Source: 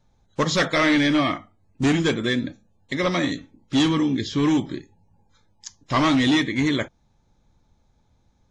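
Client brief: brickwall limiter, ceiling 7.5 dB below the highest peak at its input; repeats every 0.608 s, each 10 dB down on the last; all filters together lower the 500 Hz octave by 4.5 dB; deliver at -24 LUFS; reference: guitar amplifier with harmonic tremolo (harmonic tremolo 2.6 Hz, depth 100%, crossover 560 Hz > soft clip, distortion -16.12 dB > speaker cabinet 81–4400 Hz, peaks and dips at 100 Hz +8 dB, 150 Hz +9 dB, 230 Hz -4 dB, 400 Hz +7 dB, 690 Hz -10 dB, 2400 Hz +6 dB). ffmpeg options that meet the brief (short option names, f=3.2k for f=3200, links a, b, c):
-filter_complex "[0:a]equalizer=f=500:t=o:g=-8.5,alimiter=limit=-18.5dB:level=0:latency=1,aecho=1:1:608|1216|1824|2432:0.316|0.101|0.0324|0.0104,acrossover=split=560[a][b];[a]aeval=exprs='val(0)*(1-1/2+1/2*cos(2*PI*2.6*n/s))':c=same[c];[b]aeval=exprs='val(0)*(1-1/2-1/2*cos(2*PI*2.6*n/s))':c=same[d];[c][d]amix=inputs=2:normalize=0,asoftclip=threshold=-24.5dB,highpass=81,equalizer=f=100:t=q:w=4:g=8,equalizer=f=150:t=q:w=4:g=9,equalizer=f=230:t=q:w=4:g=-4,equalizer=f=400:t=q:w=4:g=7,equalizer=f=690:t=q:w=4:g=-10,equalizer=f=2.4k:t=q:w=4:g=6,lowpass=f=4.4k:w=0.5412,lowpass=f=4.4k:w=1.3066,volume=8.5dB"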